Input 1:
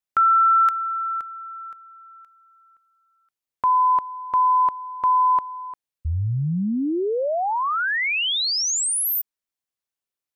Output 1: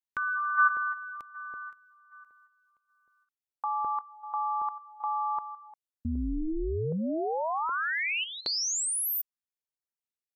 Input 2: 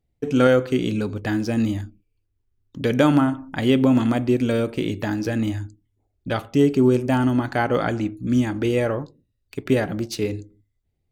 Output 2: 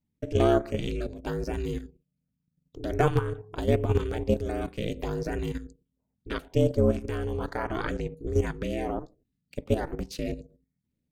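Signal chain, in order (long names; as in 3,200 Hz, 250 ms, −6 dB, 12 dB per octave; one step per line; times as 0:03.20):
ring modulation 160 Hz
auto-filter notch saw up 1.3 Hz 440–4,300 Hz
output level in coarse steps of 10 dB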